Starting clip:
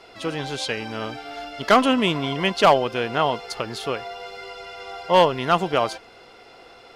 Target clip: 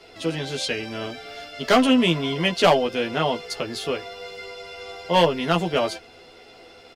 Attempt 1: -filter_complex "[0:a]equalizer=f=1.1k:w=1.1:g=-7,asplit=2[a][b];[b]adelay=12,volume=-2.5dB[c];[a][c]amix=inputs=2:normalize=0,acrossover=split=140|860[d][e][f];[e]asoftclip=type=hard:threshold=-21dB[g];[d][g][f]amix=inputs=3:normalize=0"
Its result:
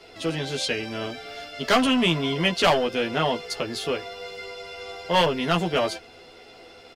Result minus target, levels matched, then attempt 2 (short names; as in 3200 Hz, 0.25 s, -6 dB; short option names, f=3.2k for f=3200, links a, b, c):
hard clip: distortion +13 dB
-filter_complex "[0:a]equalizer=f=1.1k:w=1.1:g=-7,asplit=2[a][b];[b]adelay=12,volume=-2.5dB[c];[a][c]amix=inputs=2:normalize=0,acrossover=split=140|860[d][e][f];[e]asoftclip=type=hard:threshold=-12dB[g];[d][g][f]amix=inputs=3:normalize=0"